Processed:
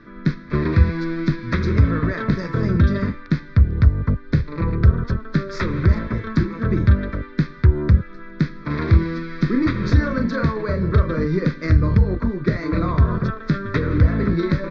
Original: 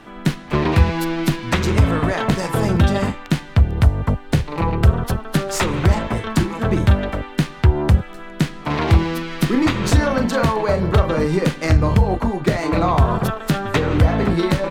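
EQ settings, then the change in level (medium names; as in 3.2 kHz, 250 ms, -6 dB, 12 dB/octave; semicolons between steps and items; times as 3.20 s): inverse Chebyshev low-pass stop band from 9.5 kHz, stop band 40 dB; treble shelf 3 kHz -9 dB; static phaser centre 2.9 kHz, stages 6; 0.0 dB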